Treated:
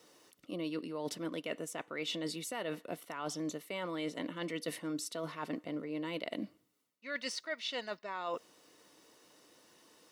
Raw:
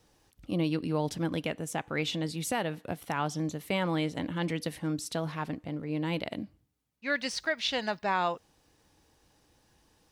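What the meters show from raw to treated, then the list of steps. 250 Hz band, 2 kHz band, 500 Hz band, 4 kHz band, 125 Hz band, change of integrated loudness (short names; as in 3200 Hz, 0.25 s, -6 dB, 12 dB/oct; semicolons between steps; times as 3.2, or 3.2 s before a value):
-7.0 dB, -8.0 dB, -5.5 dB, -5.5 dB, -15.0 dB, -7.5 dB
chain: HPF 300 Hz 12 dB/oct; reverse; compressor 10:1, threshold -41 dBFS, peak gain reduction 17.5 dB; reverse; notch comb 810 Hz; gain +6.5 dB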